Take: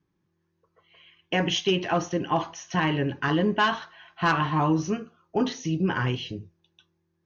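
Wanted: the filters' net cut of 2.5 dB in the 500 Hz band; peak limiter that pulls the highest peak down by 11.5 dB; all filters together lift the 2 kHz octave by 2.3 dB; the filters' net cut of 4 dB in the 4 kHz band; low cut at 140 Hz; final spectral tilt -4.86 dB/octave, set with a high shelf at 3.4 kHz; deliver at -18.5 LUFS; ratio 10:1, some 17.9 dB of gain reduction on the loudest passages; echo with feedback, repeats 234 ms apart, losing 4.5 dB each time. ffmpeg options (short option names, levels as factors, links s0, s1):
-af "highpass=140,equalizer=f=500:t=o:g=-3.5,equalizer=f=2000:t=o:g=6,highshelf=f=3400:g=-4.5,equalizer=f=4000:t=o:g=-7,acompressor=threshold=0.0141:ratio=10,alimiter=level_in=2.82:limit=0.0631:level=0:latency=1,volume=0.355,aecho=1:1:234|468|702|936|1170|1404|1638|1872|2106:0.596|0.357|0.214|0.129|0.0772|0.0463|0.0278|0.0167|0.01,volume=15"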